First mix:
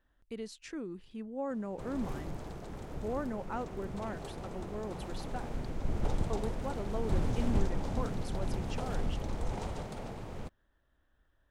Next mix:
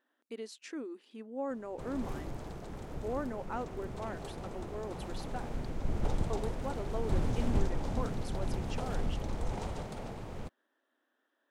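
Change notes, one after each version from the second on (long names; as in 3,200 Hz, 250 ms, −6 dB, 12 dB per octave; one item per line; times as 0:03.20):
speech: add linear-phase brick-wall high-pass 220 Hz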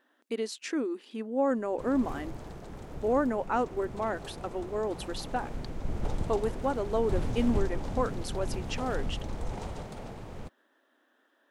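speech +10.0 dB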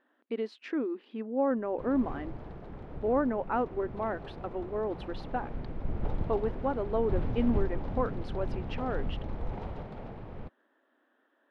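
master: add high-frequency loss of the air 360 metres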